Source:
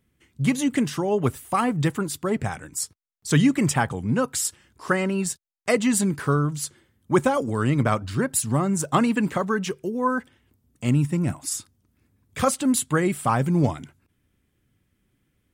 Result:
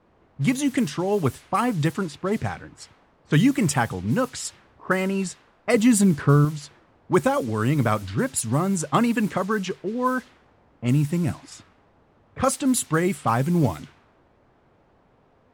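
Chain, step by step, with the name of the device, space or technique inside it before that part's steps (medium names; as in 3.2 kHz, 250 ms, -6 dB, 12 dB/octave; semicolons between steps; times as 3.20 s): cassette deck with a dynamic noise filter (white noise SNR 22 dB; level-controlled noise filter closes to 650 Hz, open at -18.5 dBFS); 5.74–6.45 s: bass shelf 320 Hz +7.5 dB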